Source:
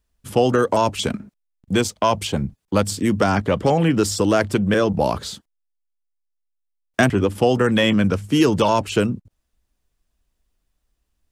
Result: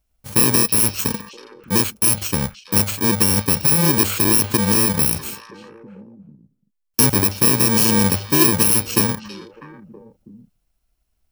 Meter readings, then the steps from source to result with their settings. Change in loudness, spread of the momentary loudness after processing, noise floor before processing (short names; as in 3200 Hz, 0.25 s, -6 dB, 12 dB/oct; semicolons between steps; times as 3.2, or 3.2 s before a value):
+4.0 dB, 10 LU, -75 dBFS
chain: FFT order left unsorted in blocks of 64 samples; delay with a stepping band-pass 0.324 s, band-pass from 3600 Hz, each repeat -1.4 oct, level -10 dB; gain +1.5 dB